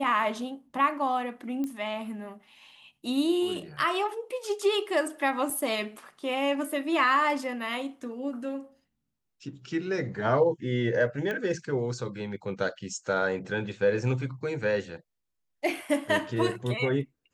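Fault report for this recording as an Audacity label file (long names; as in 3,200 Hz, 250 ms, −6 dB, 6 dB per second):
1.640000	1.640000	click −21 dBFS
5.500000	5.500000	drop-out 3.7 ms
11.310000	11.310000	click −20 dBFS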